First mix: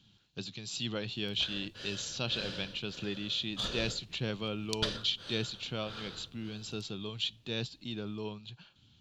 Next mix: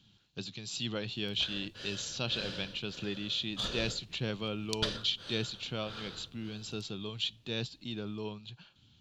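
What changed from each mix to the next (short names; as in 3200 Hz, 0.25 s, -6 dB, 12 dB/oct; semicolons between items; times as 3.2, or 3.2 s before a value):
none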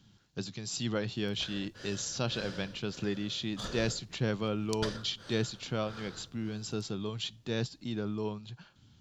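speech +4.5 dB; master: add band shelf 3200 Hz -8.5 dB 1 oct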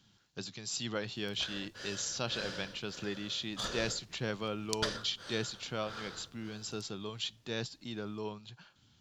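background +4.0 dB; master: add low shelf 410 Hz -8.5 dB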